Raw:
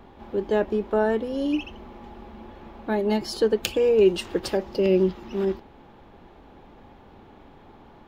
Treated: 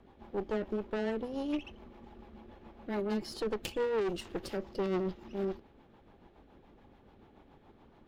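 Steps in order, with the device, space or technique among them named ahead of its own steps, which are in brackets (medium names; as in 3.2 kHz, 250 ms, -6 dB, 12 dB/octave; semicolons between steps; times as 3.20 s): overdriven rotary cabinet (valve stage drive 24 dB, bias 0.8; rotary cabinet horn 7 Hz); trim -3 dB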